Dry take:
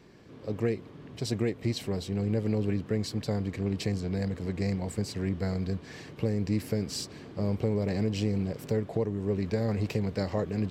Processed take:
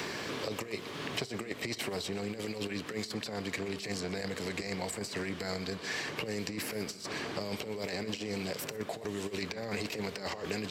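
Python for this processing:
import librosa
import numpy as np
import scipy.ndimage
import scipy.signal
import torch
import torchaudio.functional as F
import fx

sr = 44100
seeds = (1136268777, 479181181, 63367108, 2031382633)

y = fx.highpass(x, sr, hz=1300.0, slope=6)
y = fx.over_compress(y, sr, threshold_db=-44.0, ratio=-0.5)
y = y + 10.0 ** (-18.0 / 20.0) * np.pad(y, (int(123 * sr / 1000.0), 0))[:len(y)]
y = fx.rev_fdn(y, sr, rt60_s=1.1, lf_ratio=1.0, hf_ratio=0.75, size_ms=14.0, drr_db=17.0)
y = fx.band_squash(y, sr, depth_pct=100)
y = y * 10.0 ** (7.0 / 20.0)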